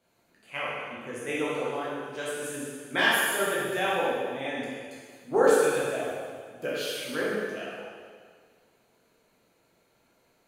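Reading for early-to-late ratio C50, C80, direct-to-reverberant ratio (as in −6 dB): −3.0 dB, −0.5 dB, −8.0 dB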